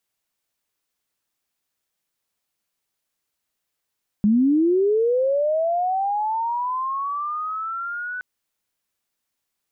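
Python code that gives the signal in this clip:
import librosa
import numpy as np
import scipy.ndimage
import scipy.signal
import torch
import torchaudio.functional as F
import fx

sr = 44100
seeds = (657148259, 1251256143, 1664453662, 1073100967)

y = fx.chirp(sr, length_s=3.97, from_hz=200.0, to_hz=1500.0, law='linear', from_db=-13.5, to_db=-27.0)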